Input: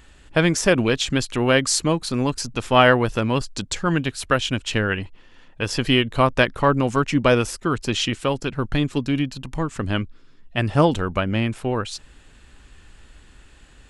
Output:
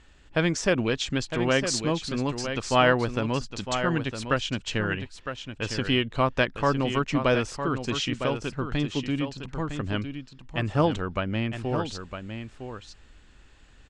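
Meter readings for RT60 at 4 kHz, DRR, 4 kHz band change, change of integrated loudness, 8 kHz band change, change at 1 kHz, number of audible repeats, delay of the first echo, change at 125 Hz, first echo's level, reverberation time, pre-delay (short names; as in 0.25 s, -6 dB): none, none, -5.5 dB, -6.0 dB, -7.5 dB, -5.5 dB, 1, 0.958 s, -5.5 dB, -8.5 dB, none, none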